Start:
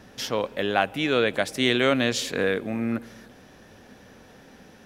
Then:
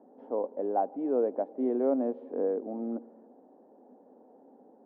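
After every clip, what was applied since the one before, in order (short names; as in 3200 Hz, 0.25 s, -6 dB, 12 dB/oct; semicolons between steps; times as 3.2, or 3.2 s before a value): Chebyshev band-pass 250–850 Hz, order 3; gain -3.5 dB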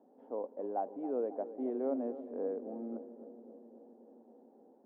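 darkening echo 0.271 s, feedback 76%, low-pass 1300 Hz, level -13 dB; gain -7.5 dB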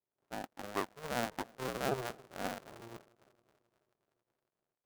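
cycle switcher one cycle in 2, inverted; power-law curve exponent 2; gain +4 dB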